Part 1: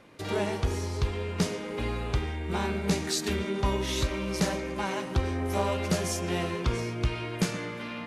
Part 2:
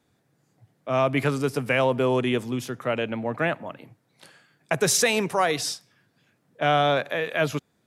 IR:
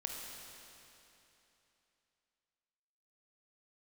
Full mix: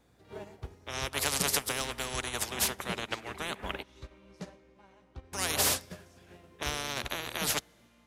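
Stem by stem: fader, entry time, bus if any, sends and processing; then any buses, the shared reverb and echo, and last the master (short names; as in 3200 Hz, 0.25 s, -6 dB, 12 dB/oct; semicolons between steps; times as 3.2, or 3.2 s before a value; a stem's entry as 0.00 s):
-5.5 dB, 0.00 s, send -14.5 dB, high shelf 7800 Hz -9.5 dB; auto duck -7 dB, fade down 1.10 s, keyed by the second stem
-1.0 dB, 0.00 s, muted 3.83–5.33, send -12 dB, spectral compressor 10:1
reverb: on, RT60 3.1 s, pre-delay 21 ms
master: bell 580 Hz +3 dB 1.8 oct; hum 60 Hz, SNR 20 dB; upward expander 2.5:1, over -38 dBFS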